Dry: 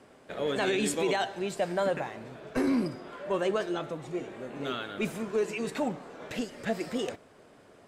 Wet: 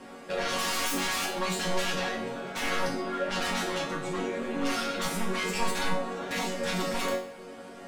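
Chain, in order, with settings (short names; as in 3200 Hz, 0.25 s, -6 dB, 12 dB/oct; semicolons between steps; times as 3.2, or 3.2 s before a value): sine folder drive 19 dB, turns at -15.5 dBFS; resonator bank F#3 major, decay 0.48 s; gain +7.5 dB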